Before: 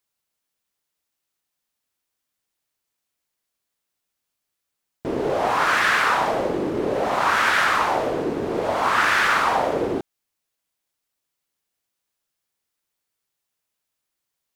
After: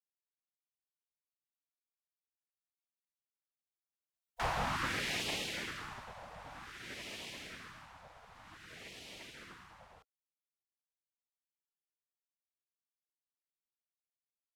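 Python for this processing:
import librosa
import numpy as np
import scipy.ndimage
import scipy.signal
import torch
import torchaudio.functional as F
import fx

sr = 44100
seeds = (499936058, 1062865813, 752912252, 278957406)

y = fx.doppler_pass(x, sr, speed_mps=47, closest_m=8.4, pass_at_s=4.3)
y = fx.spec_gate(y, sr, threshold_db=-15, keep='weak')
y = y * librosa.db_to_amplitude(6.5)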